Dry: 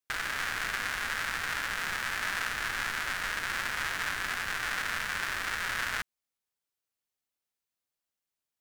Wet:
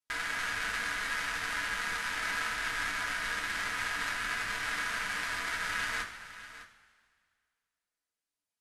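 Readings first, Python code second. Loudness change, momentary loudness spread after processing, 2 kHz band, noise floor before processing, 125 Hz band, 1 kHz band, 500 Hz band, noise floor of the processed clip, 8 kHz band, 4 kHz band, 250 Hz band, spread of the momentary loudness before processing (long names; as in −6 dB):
−1.0 dB, 3 LU, −1.0 dB, below −85 dBFS, −3.0 dB, −1.0 dB, −1.5 dB, below −85 dBFS, −1.5 dB, −1.5 dB, 0.0 dB, 1 LU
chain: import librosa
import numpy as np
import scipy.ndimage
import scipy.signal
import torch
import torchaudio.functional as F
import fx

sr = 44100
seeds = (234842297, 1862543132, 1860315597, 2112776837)

y = scipy.signal.sosfilt(scipy.signal.butter(6, 12000.0, 'lowpass', fs=sr, output='sos'), x)
y = y + 10.0 ** (-14.5 / 20.0) * np.pad(y, (int(608 * sr / 1000.0), 0))[:len(y)]
y = fx.rev_double_slope(y, sr, seeds[0], early_s=0.24, late_s=2.0, knee_db=-18, drr_db=-2.0)
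y = F.gain(torch.from_numpy(y), -5.5).numpy()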